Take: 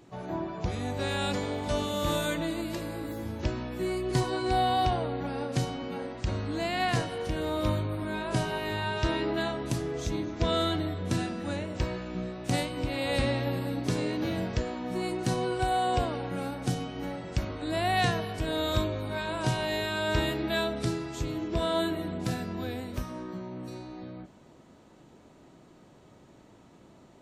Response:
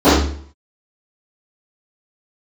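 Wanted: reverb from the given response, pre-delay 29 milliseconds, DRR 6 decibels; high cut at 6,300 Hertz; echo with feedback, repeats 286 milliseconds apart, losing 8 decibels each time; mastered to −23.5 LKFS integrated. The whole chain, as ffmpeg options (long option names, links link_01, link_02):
-filter_complex "[0:a]lowpass=6300,aecho=1:1:286|572|858|1144|1430:0.398|0.159|0.0637|0.0255|0.0102,asplit=2[link_01][link_02];[1:a]atrim=start_sample=2205,adelay=29[link_03];[link_02][link_03]afir=irnorm=-1:irlink=0,volume=-36.5dB[link_04];[link_01][link_04]amix=inputs=2:normalize=0,volume=3dB"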